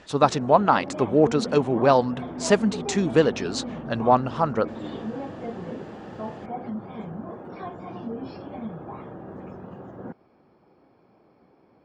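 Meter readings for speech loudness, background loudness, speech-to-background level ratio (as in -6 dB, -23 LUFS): -22.5 LUFS, -35.5 LUFS, 13.0 dB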